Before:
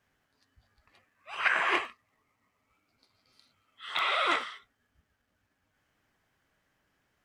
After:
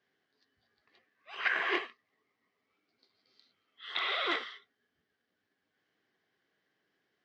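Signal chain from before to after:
loudspeaker in its box 250–4,900 Hz, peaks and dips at 260 Hz −3 dB, 400 Hz +4 dB, 590 Hz −7 dB, 910 Hz −9 dB, 1,300 Hz −8 dB, 2,500 Hz −7 dB

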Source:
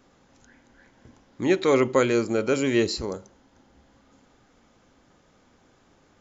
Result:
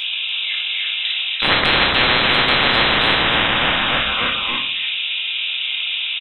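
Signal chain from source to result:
adaptive Wiener filter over 25 samples
flat-topped bell 1,200 Hz +12 dB
notch filter 2,200 Hz, Q 28
voice inversion scrambler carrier 3,700 Hz
dynamic equaliser 2,700 Hz, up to −7 dB, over −34 dBFS, Q 4.3
echo with shifted repeats 289 ms, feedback 52%, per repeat −130 Hz, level −9 dB
convolution reverb RT60 0.45 s, pre-delay 4 ms, DRR 0 dB
every bin compressed towards the loudest bin 10 to 1
level +1 dB

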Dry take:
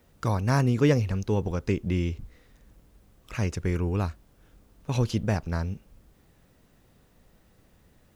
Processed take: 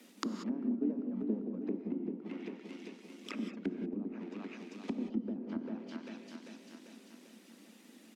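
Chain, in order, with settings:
sub-octave generator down 2 octaves, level +3 dB
reverb reduction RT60 1.4 s
in parallel at −6.5 dB: decimation without filtering 41×
on the sum: downward compressor 5 to 1, threshold −32 dBFS, peak gain reduction 17.5 dB
Butterworth high-pass 210 Hz 72 dB per octave
repeating echo 394 ms, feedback 57%, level −6.5 dB
treble cut that deepens with the level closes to 380 Hz, closed at −38.5 dBFS
flat-topped bell 790 Hz −8.5 dB 2.5 octaves
reverb whose tail is shaped and stops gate 210 ms rising, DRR 7 dB
level +8.5 dB

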